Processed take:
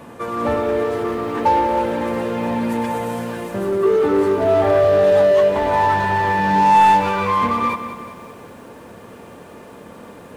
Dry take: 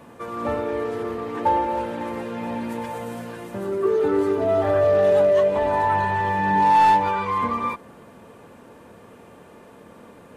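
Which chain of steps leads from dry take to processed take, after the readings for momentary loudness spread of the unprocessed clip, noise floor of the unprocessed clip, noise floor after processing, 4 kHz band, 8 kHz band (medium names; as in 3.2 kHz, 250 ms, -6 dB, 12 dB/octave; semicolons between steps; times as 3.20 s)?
14 LU, -47 dBFS, -40 dBFS, +7.0 dB, no reading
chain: in parallel at -4 dB: hard clipper -25.5 dBFS, distortion -5 dB; on the sum: bit-crushed delay 189 ms, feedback 55%, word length 8-bit, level -11 dB; trim +2.5 dB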